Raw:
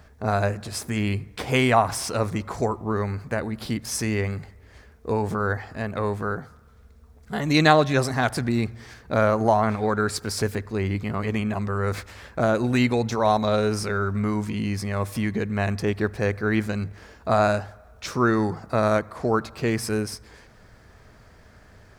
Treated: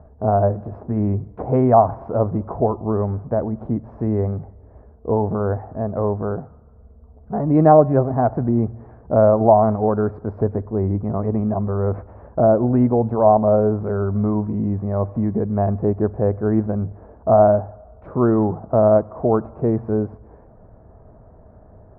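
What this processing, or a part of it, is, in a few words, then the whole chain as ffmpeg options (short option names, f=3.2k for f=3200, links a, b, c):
under water: -af "lowpass=f=920:w=0.5412,lowpass=f=920:w=1.3066,equalizer=f=650:t=o:w=0.29:g=5,volume=5dB"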